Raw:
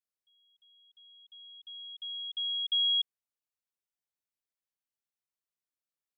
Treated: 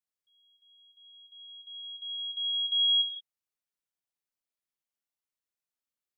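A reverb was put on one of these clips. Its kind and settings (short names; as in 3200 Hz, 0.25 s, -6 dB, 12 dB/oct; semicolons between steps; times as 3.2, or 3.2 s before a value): non-linear reverb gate 0.2 s flat, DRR 3.5 dB; gain -2.5 dB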